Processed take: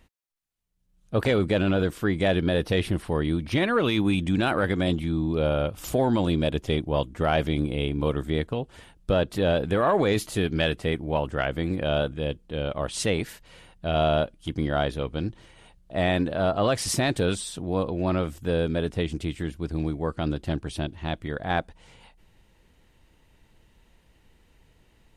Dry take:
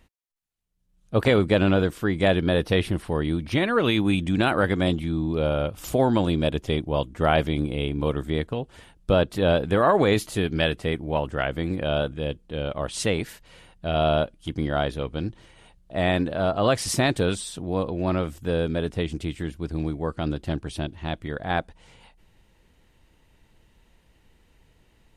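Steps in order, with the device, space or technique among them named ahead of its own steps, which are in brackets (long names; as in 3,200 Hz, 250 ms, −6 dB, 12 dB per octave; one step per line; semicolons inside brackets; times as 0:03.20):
soft clipper into limiter (soft clipping −7.5 dBFS, distortion −25 dB; brickwall limiter −13 dBFS, peak gain reduction 3.5 dB)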